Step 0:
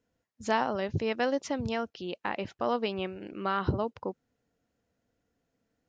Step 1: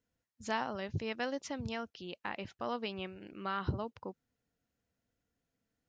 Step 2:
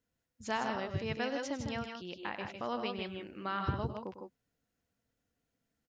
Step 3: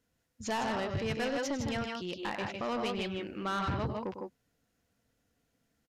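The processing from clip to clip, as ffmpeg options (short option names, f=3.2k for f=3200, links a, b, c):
-af "equalizer=f=480:t=o:w=2.4:g=-5.5,volume=-4dB"
-af "aecho=1:1:101|155|163|169:0.251|0.501|0.141|0.251"
-af "asoftclip=type=tanh:threshold=-35dB,aresample=32000,aresample=44100,volume=7dB"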